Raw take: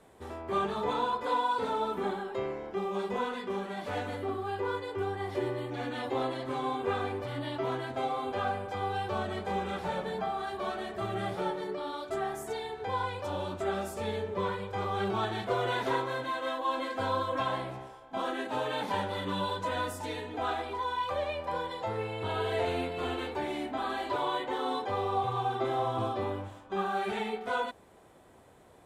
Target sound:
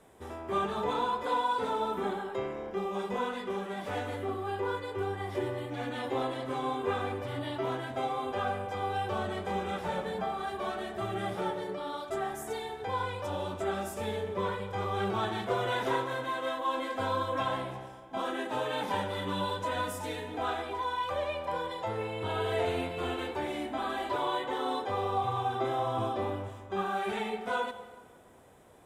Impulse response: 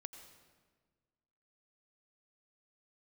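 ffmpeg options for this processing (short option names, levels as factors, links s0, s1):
-filter_complex "[0:a]bandreject=f=4300:w=10,asplit=2[s0][s1];[s1]highshelf=f=8100:g=7[s2];[1:a]atrim=start_sample=2205[s3];[s2][s3]afir=irnorm=-1:irlink=0,volume=2.37[s4];[s0][s4]amix=inputs=2:normalize=0,volume=0.422"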